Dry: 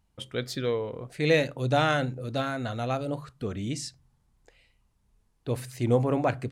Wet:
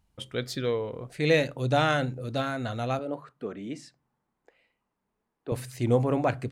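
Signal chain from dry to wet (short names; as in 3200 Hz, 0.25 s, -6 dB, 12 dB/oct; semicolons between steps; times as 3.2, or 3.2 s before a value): 2.99–5.52 three-band isolator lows -24 dB, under 200 Hz, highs -14 dB, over 2300 Hz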